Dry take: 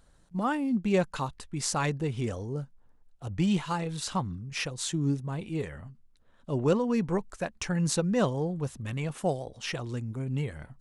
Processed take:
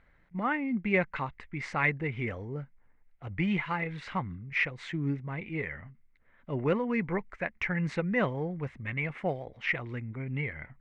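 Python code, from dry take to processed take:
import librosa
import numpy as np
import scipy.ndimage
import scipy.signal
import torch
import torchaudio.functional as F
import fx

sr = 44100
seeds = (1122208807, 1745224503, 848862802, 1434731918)

y = fx.lowpass_res(x, sr, hz=2100.0, q=8.3)
y = y * 10.0 ** (-3.5 / 20.0)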